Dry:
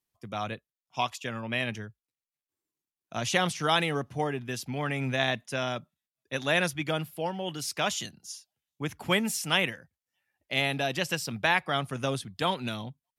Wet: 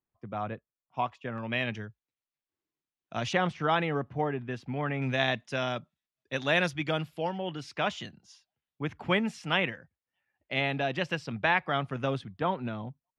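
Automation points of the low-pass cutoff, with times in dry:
1.5 kHz
from 1.38 s 3.8 kHz
from 3.33 s 2 kHz
from 5.02 s 4.8 kHz
from 7.38 s 2.7 kHz
from 12.38 s 1.5 kHz

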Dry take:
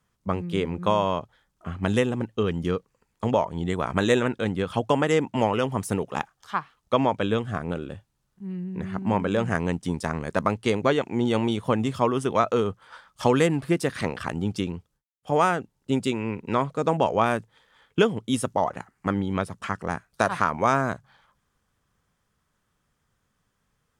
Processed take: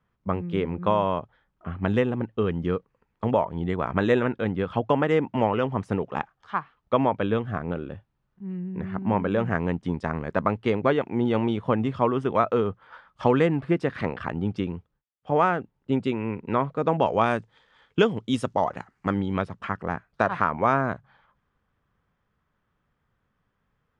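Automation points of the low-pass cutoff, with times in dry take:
16.75 s 2.4 kHz
17.29 s 5.1 kHz
19.16 s 5.1 kHz
19.70 s 2.5 kHz

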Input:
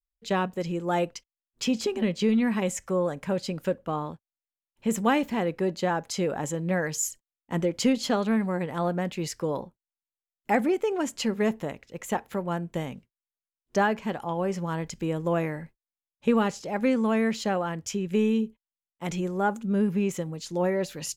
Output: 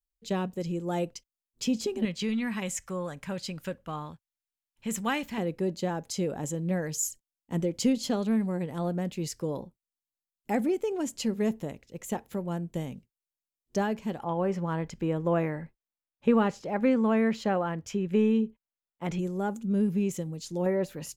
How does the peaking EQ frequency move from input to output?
peaking EQ -10 dB 2.6 oct
1.4 kHz
from 2.05 s 440 Hz
from 5.38 s 1.4 kHz
from 14.19 s 9.4 kHz
from 19.19 s 1.3 kHz
from 20.66 s 4.7 kHz

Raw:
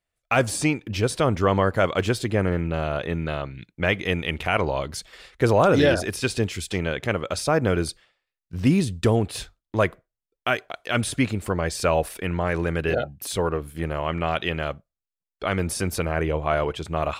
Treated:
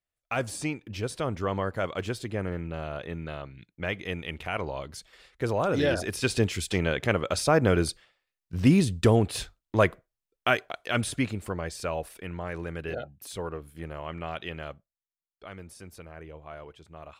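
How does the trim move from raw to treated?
5.66 s -9 dB
6.37 s -0.5 dB
10.53 s -0.5 dB
11.94 s -10.5 dB
14.71 s -10.5 dB
15.69 s -20 dB

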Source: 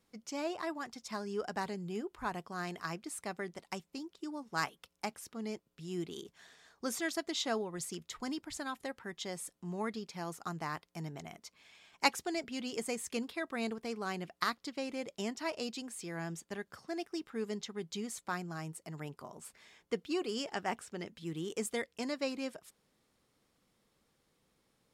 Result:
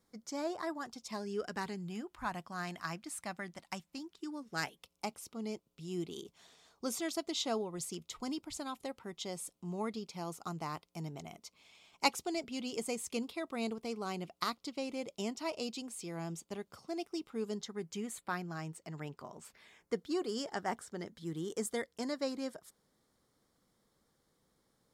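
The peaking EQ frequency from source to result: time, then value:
peaking EQ -13 dB 0.38 oct
0.75 s 2.7 kHz
1.88 s 420 Hz
4.00 s 420 Hz
4.90 s 1.7 kHz
17.38 s 1.7 kHz
18.62 s 11 kHz
19.45 s 11 kHz
19.95 s 2.6 kHz

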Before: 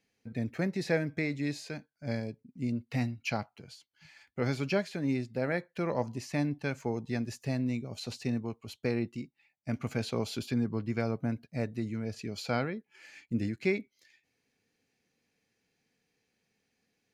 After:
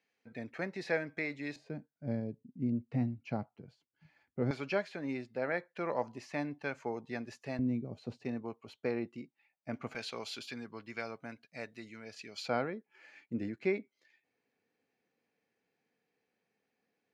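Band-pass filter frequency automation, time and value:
band-pass filter, Q 0.54
1.3 kHz
from 1.56 s 240 Hz
from 4.51 s 1.1 kHz
from 7.59 s 280 Hz
from 8.25 s 830 Hz
from 9.95 s 2.5 kHz
from 12.48 s 710 Hz

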